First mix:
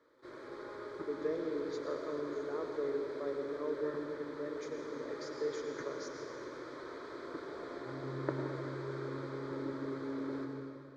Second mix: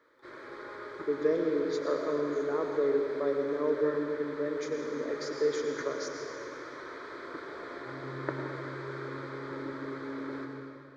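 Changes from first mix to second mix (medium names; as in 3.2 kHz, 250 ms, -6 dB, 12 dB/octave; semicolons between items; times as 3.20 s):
speech +8.5 dB; background: add peaking EQ 1.9 kHz +8 dB 1.8 oct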